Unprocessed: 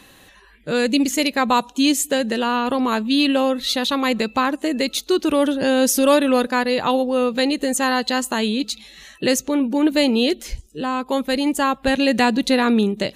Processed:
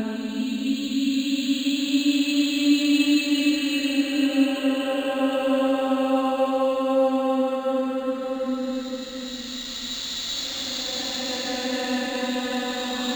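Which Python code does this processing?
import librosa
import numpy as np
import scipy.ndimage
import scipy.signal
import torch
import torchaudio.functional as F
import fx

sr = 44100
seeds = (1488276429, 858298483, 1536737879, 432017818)

y = fx.paulstretch(x, sr, seeds[0], factor=16.0, window_s=0.25, from_s=3.03)
y = np.interp(np.arange(len(y)), np.arange(len(y))[::4], y[::4])
y = F.gain(torch.from_numpy(y), -4.5).numpy()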